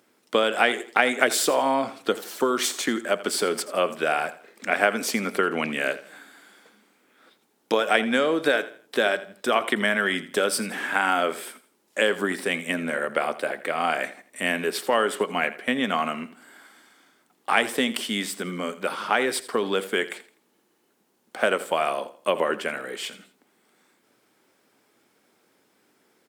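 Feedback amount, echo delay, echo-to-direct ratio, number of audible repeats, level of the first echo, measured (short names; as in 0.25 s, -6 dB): 32%, 83 ms, -15.5 dB, 2, -16.0 dB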